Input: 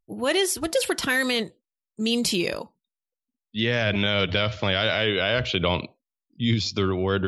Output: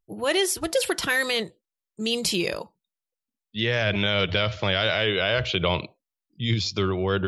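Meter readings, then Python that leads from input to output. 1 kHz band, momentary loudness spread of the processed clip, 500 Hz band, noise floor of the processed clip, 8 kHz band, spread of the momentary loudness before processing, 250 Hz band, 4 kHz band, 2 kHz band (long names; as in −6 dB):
0.0 dB, 8 LU, −0.5 dB, below −85 dBFS, 0.0 dB, 7 LU, −3.0 dB, 0.0 dB, 0.0 dB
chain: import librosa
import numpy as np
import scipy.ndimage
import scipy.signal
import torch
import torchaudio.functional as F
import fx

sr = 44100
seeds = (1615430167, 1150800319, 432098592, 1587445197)

y = fx.peak_eq(x, sr, hz=250.0, db=-11.5, octaves=0.24)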